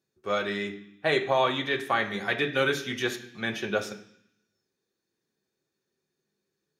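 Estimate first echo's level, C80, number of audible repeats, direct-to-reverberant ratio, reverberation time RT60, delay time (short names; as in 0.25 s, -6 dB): none, 14.0 dB, none, 1.5 dB, 0.65 s, none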